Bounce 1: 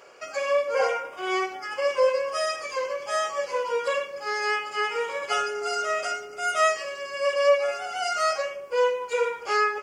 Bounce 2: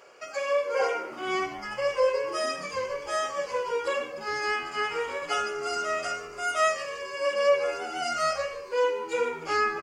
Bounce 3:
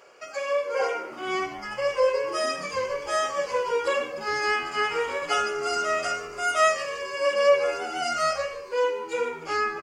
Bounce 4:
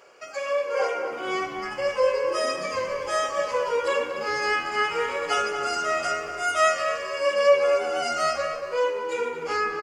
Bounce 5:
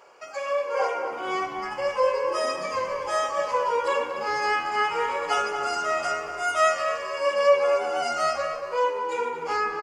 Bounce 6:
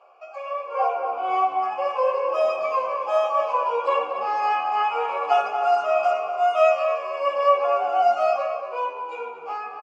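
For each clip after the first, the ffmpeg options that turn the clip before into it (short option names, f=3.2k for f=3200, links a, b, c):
-filter_complex "[0:a]asplit=8[a][b][c][d][e][f][g][h];[b]adelay=150,afreqshift=-83,volume=-17dB[i];[c]adelay=300,afreqshift=-166,volume=-20.7dB[j];[d]adelay=450,afreqshift=-249,volume=-24.5dB[k];[e]adelay=600,afreqshift=-332,volume=-28.2dB[l];[f]adelay=750,afreqshift=-415,volume=-32dB[m];[g]adelay=900,afreqshift=-498,volume=-35.7dB[n];[h]adelay=1050,afreqshift=-581,volume=-39.5dB[o];[a][i][j][k][l][m][n][o]amix=inputs=8:normalize=0,volume=-2.5dB"
-af "dynaudnorm=f=480:g=9:m=3.5dB"
-filter_complex "[0:a]asplit=2[a][b];[b]adelay=234,lowpass=f=2.4k:p=1,volume=-6.5dB,asplit=2[c][d];[d]adelay=234,lowpass=f=2.4k:p=1,volume=0.34,asplit=2[e][f];[f]adelay=234,lowpass=f=2.4k:p=1,volume=0.34,asplit=2[g][h];[h]adelay=234,lowpass=f=2.4k:p=1,volume=0.34[i];[a][c][e][g][i]amix=inputs=5:normalize=0"
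-af "equalizer=f=910:t=o:w=0.57:g=9.5,volume=-2.5dB"
-filter_complex "[0:a]dynaudnorm=f=240:g=9:m=6dB,asplit=3[a][b][c];[a]bandpass=f=730:t=q:w=8,volume=0dB[d];[b]bandpass=f=1.09k:t=q:w=8,volume=-6dB[e];[c]bandpass=f=2.44k:t=q:w=8,volume=-9dB[f];[d][e][f]amix=inputs=3:normalize=0,asplit=2[g][h];[h]adelay=13,volume=-6dB[i];[g][i]amix=inputs=2:normalize=0,volume=7dB"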